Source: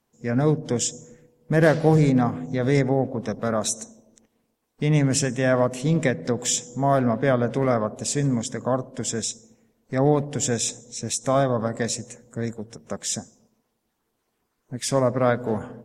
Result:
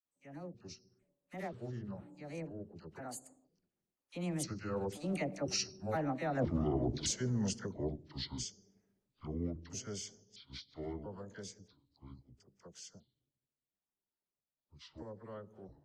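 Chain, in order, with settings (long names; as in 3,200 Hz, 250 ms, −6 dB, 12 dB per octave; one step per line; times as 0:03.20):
pitch shifter gated in a rhythm −7 semitones, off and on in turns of 576 ms
source passing by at 0:06.41, 50 m/s, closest 2.6 metres
reversed playback
downward compressor 10 to 1, threshold −46 dBFS, peak gain reduction 24 dB
reversed playback
all-pass dispersion lows, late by 52 ms, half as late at 950 Hz
level +16 dB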